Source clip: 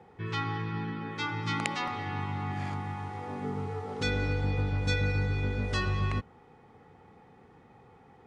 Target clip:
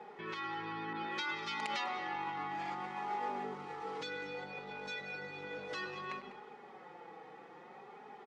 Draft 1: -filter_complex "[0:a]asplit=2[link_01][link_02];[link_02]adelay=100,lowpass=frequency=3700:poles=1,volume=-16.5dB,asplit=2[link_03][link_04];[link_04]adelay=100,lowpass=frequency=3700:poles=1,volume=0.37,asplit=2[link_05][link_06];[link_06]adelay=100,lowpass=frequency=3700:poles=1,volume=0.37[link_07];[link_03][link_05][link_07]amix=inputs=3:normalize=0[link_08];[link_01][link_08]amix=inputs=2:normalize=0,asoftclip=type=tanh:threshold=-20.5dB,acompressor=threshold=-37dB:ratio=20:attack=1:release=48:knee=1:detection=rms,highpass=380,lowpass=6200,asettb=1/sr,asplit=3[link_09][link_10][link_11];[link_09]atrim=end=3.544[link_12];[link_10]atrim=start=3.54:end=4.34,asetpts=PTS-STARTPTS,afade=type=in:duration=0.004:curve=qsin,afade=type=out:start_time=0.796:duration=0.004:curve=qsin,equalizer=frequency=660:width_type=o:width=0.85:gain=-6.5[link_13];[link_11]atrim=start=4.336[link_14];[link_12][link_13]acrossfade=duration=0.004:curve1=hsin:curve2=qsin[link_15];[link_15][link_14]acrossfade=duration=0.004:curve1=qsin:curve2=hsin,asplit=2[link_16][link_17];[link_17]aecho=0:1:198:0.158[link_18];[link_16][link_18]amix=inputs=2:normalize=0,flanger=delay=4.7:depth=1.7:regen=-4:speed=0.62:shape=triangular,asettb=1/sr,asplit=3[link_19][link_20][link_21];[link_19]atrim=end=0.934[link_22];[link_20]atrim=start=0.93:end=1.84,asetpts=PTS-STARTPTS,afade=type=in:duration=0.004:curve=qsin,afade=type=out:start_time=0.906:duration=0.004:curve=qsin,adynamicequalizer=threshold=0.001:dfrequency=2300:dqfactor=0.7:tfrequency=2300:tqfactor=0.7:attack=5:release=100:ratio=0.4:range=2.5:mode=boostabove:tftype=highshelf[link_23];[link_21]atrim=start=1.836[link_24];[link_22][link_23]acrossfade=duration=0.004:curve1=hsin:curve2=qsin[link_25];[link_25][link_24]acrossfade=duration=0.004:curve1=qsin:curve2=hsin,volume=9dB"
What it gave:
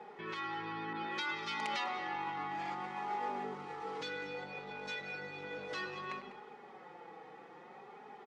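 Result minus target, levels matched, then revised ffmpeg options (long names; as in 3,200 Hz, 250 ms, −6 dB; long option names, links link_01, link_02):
soft clipping: distortion +10 dB
-filter_complex "[0:a]asplit=2[link_01][link_02];[link_02]adelay=100,lowpass=frequency=3700:poles=1,volume=-16.5dB,asplit=2[link_03][link_04];[link_04]adelay=100,lowpass=frequency=3700:poles=1,volume=0.37,asplit=2[link_05][link_06];[link_06]adelay=100,lowpass=frequency=3700:poles=1,volume=0.37[link_07];[link_03][link_05][link_07]amix=inputs=3:normalize=0[link_08];[link_01][link_08]amix=inputs=2:normalize=0,asoftclip=type=tanh:threshold=-13dB,acompressor=threshold=-37dB:ratio=20:attack=1:release=48:knee=1:detection=rms,highpass=380,lowpass=6200,asettb=1/sr,asplit=3[link_09][link_10][link_11];[link_09]atrim=end=3.544[link_12];[link_10]atrim=start=3.54:end=4.34,asetpts=PTS-STARTPTS,afade=type=in:duration=0.004:curve=qsin,afade=type=out:start_time=0.796:duration=0.004:curve=qsin,equalizer=frequency=660:width_type=o:width=0.85:gain=-6.5[link_13];[link_11]atrim=start=4.336[link_14];[link_12][link_13]acrossfade=duration=0.004:curve1=hsin:curve2=qsin[link_15];[link_15][link_14]acrossfade=duration=0.004:curve1=qsin:curve2=hsin,asplit=2[link_16][link_17];[link_17]aecho=0:1:198:0.158[link_18];[link_16][link_18]amix=inputs=2:normalize=0,flanger=delay=4.7:depth=1.7:regen=-4:speed=0.62:shape=triangular,asettb=1/sr,asplit=3[link_19][link_20][link_21];[link_19]atrim=end=0.934[link_22];[link_20]atrim=start=0.93:end=1.84,asetpts=PTS-STARTPTS,afade=type=in:duration=0.004:curve=qsin,afade=type=out:start_time=0.906:duration=0.004:curve=qsin,adynamicequalizer=threshold=0.001:dfrequency=2300:dqfactor=0.7:tfrequency=2300:tqfactor=0.7:attack=5:release=100:ratio=0.4:range=2.5:mode=boostabove:tftype=highshelf[link_23];[link_21]atrim=start=1.836[link_24];[link_22][link_23]acrossfade=duration=0.004:curve1=hsin:curve2=qsin[link_25];[link_25][link_24]acrossfade=duration=0.004:curve1=qsin:curve2=hsin,volume=9dB"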